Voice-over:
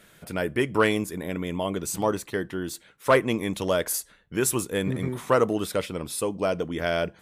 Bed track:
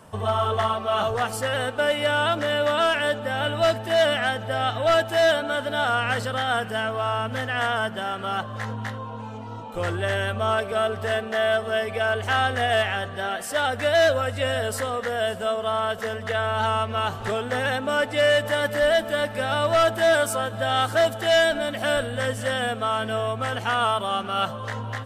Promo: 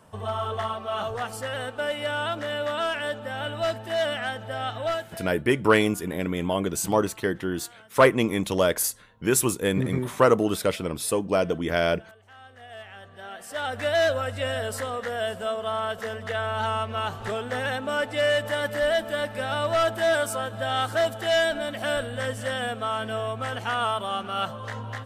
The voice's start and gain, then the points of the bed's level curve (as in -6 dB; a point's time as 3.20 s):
4.90 s, +2.5 dB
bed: 4.87 s -6 dB
5.36 s -28 dB
12.33 s -28 dB
13.81 s -3.5 dB